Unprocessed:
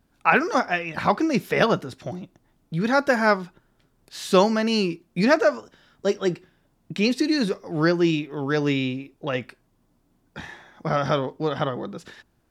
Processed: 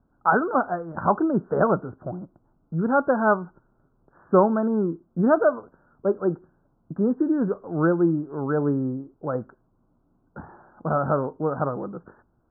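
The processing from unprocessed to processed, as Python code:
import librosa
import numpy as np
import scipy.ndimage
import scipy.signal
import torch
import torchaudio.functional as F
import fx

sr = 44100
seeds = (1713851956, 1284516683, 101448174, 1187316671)

y = scipy.signal.sosfilt(scipy.signal.butter(16, 1500.0, 'lowpass', fs=sr, output='sos'), x)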